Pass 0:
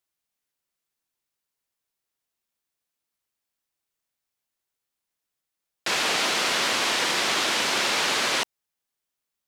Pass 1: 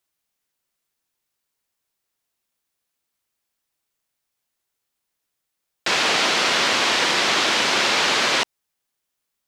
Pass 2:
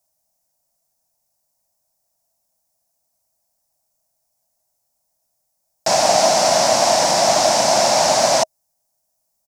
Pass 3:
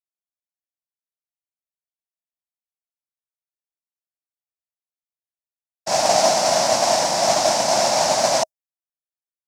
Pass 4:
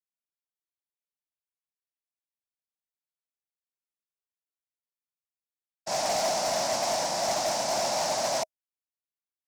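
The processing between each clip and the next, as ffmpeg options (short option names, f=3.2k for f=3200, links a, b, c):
-filter_complex "[0:a]acrossover=split=7400[a][b];[b]acompressor=threshold=-49dB:ratio=4:attack=1:release=60[c];[a][c]amix=inputs=2:normalize=0,volume=5dB"
-af "firequalizer=gain_entry='entry(160,0);entry(430,-14);entry(630,10);entry(1200,-12);entry(3200,-17);entry(5400,1)':delay=0.05:min_phase=1,volume=7.5dB"
-af "agate=range=-33dB:threshold=-11dB:ratio=3:detection=peak"
-af "asoftclip=type=hard:threshold=-14.5dB,volume=-8.5dB"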